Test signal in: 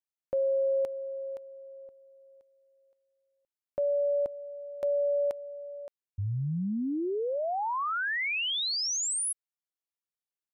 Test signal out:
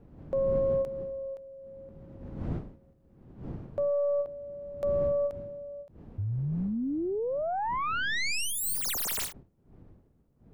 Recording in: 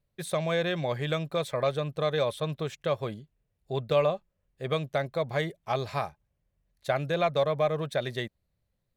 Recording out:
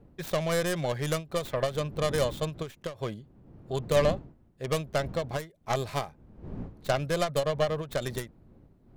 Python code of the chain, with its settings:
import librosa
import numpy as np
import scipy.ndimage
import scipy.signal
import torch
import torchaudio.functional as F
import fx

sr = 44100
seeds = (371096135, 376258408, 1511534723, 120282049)

y = fx.tracing_dist(x, sr, depth_ms=0.32)
y = fx.dmg_wind(y, sr, seeds[0], corner_hz=210.0, level_db=-44.0)
y = fx.end_taper(y, sr, db_per_s=200.0)